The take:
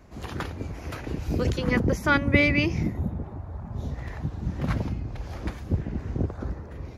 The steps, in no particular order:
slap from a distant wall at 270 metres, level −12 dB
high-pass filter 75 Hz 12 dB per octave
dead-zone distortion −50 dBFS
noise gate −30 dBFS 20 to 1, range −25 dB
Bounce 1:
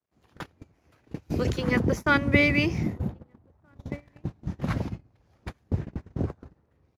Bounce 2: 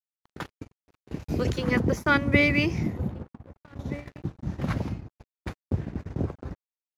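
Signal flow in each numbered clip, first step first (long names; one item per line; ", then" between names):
slap from a distant wall, then dead-zone distortion, then high-pass filter, then noise gate
slap from a distant wall, then noise gate, then high-pass filter, then dead-zone distortion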